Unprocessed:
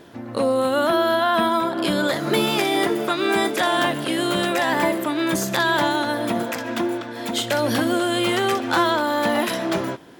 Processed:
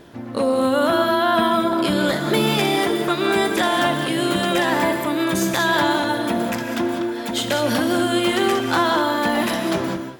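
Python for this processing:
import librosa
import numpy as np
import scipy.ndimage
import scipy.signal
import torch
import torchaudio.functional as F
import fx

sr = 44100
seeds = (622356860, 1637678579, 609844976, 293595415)

y = fx.low_shelf(x, sr, hz=73.0, db=11.0)
y = fx.rev_gated(y, sr, seeds[0], gate_ms=220, shape='rising', drr_db=6.0)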